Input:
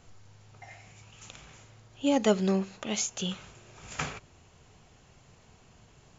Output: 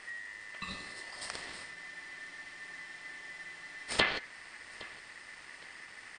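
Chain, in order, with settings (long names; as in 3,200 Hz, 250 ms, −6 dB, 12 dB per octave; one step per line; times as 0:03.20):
treble cut that deepens with the level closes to 530 Hz, closed at −26.5 dBFS
ring modulation 1,900 Hz
on a send: repeating echo 814 ms, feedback 31%, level −21 dB
on the sum: frozen spectrum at 0:01.76, 2.12 s
level +10 dB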